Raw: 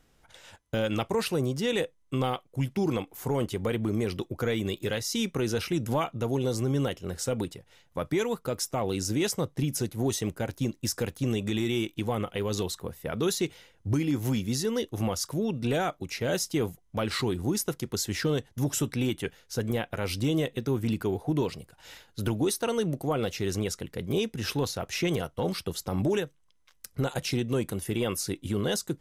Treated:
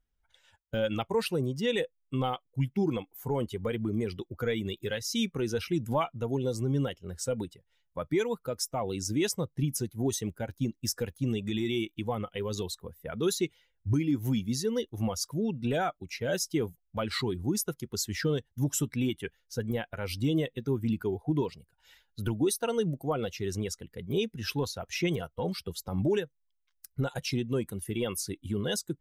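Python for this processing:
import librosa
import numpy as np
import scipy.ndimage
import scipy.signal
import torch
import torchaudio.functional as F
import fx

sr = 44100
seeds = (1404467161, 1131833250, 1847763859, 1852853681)

y = fx.bin_expand(x, sr, power=1.5)
y = y * librosa.db_to_amplitude(1.5)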